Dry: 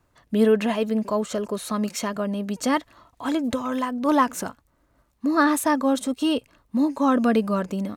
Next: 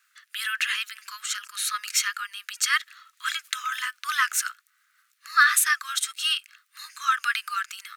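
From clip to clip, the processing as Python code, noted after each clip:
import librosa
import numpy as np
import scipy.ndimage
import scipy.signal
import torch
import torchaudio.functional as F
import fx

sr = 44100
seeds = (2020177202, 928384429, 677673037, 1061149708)

y = scipy.signal.sosfilt(scipy.signal.butter(12, 1300.0, 'highpass', fs=sr, output='sos'), x)
y = F.gain(torch.from_numpy(y), 8.5).numpy()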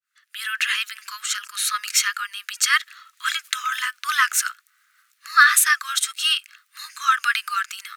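y = fx.fade_in_head(x, sr, length_s=0.72)
y = F.gain(torch.from_numpy(y), 4.5).numpy()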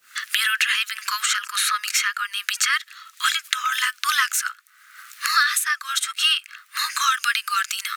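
y = fx.band_squash(x, sr, depth_pct=100)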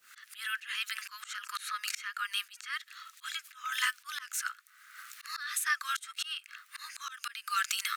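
y = fx.auto_swell(x, sr, attack_ms=396.0)
y = F.gain(torch.from_numpy(y), -5.5).numpy()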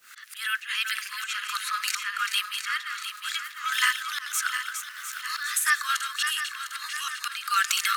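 y = fx.reverse_delay_fb(x, sr, ms=352, feedback_pct=70, wet_db=-7)
y = F.gain(torch.from_numpy(y), 7.0).numpy()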